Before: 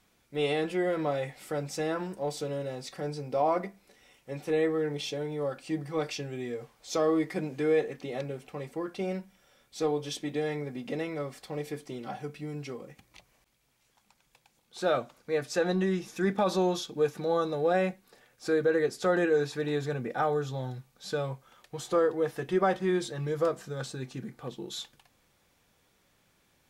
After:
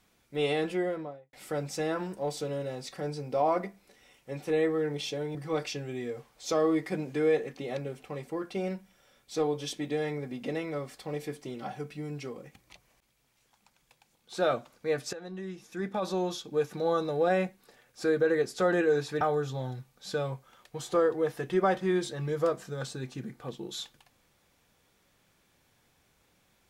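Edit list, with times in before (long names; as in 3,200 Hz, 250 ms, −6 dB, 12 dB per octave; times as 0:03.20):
0:00.66–0:01.33: fade out and dull
0:05.35–0:05.79: remove
0:15.57–0:17.37: fade in, from −17.5 dB
0:19.65–0:20.20: remove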